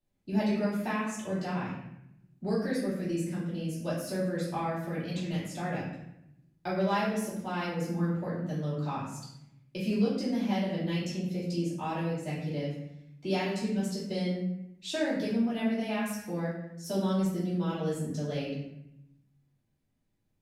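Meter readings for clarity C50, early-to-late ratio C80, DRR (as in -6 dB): 1.5 dB, 5.0 dB, -11.5 dB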